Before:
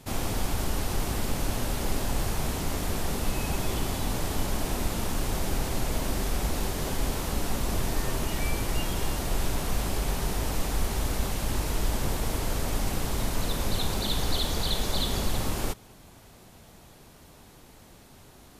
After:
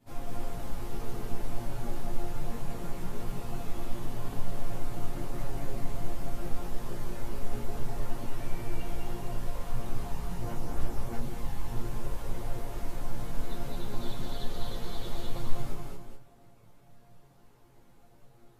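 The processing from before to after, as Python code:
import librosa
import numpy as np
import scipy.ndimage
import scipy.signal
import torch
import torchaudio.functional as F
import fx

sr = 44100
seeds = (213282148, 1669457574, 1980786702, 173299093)

p1 = fx.high_shelf(x, sr, hz=11000.0, db=6.5)
p2 = p1 + fx.echo_single(p1, sr, ms=223, db=-4.5, dry=0)
p3 = fx.chorus_voices(p2, sr, voices=6, hz=0.77, base_ms=13, depth_ms=4.3, mix_pct=60)
p4 = fx.high_shelf(p3, sr, hz=2300.0, db=-11.5)
p5 = fx.resonator_bank(p4, sr, root=46, chord='minor', decay_s=0.23)
p6 = p5 + 10.0 ** (-4.5 / 20.0) * np.pad(p5, (int(199 * sr / 1000.0), 0))[:len(p5)]
y = p6 * 10.0 ** (5.0 / 20.0)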